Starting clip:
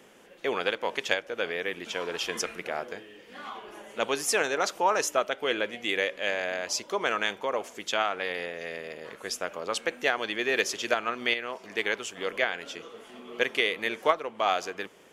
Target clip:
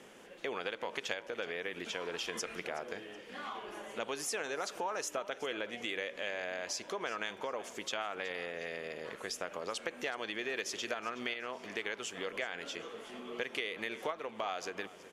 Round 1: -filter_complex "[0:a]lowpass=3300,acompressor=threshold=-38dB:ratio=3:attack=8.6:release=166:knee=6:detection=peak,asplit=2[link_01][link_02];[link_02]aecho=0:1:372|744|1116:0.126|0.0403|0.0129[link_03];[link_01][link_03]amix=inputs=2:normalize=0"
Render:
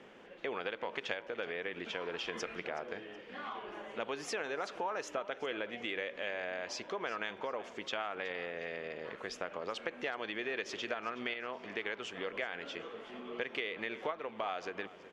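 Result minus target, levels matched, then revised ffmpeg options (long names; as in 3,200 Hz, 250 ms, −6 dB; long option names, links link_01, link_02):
8,000 Hz band −8.5 dB
-filter_complex "[0:a]lowpass=12000,acompressor=threshold=-38dB:ratio=3:attack=8.6:release=166:knee=6:detection=peak,asplit=2[link_01][link_02];[link_02]aecho=0:1:372|744|1116:0.126|0.0403|0.0129[link_03];[link_01][link_03]amix=inputs=2:normalize=0"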